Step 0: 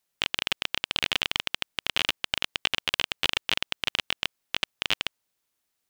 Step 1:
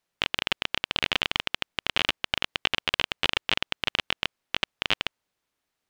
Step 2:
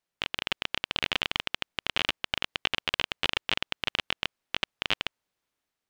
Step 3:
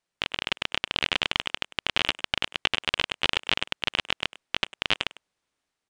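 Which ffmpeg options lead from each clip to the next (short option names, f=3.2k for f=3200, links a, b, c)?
-af "lowpass=f=2.8k:p=1,volume=3.5dB"
-af "dynaudnorm=f=130:g=7:m=5.5dB,volume=-5.5dB"
-filter_complex "[0:a]asplit=2[a][b];[b]adelay=100,highpass=300,lowpass=3.4k,asoftclip=type=hard:threshold=-16.5dB,volume=-15dB[c];[a][c]amix=inputs=2:normalize=0,aresample=22050,aresample=44100,volume=3dB"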